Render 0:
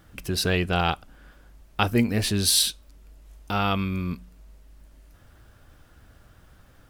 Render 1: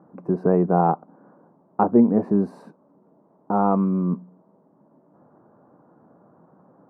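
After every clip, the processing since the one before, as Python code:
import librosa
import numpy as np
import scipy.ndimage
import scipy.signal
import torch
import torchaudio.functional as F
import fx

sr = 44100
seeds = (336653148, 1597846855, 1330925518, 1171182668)

y = scipy.signal.sosfilt(scipy.signal.ellip(3, 1.0, 50, [170.0, 1000.0], 'bandpass', fs=sr, output='sos'), x)
y = F.gain(torch.from_numpy(y), 8.0).numpy()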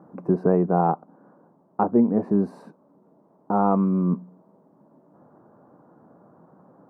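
y = fx.rider(x, sr, range_db=4, speed_s=0.5)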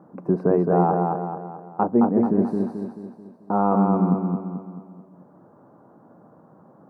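y = fx.echo_feedback(x, sr, ms=218, feedback_pct=47, wet_db=-3.5)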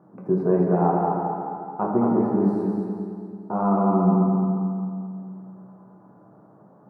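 y = fx.rev_fdn(x, sr, rt60_s=2.4, lf_ratio=1.05, hf_ratio=0.4, size_ms=47.0, drr_db=-2.5)
y = F.gain(torch.from_numpy(y), -5.5).numpy()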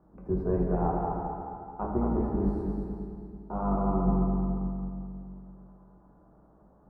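y = fx.octave_divider(x, sr, octaves=2, level_db=-1.0)
y = F.gain(torch.from_numpy(y), -8.5).numpy()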